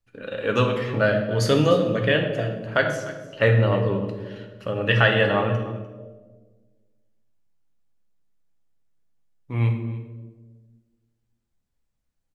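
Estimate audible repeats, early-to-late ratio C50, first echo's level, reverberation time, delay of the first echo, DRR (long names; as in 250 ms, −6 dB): 1, 6.5 dB, −17.5 dB, 1.4 s, 298 ms, 2.5 dB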